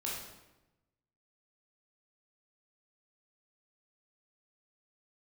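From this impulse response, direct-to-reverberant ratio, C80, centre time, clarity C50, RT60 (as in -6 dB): -5.0 dB, 4.0 dB, 62 ms, 0.5 dB, 1.0 s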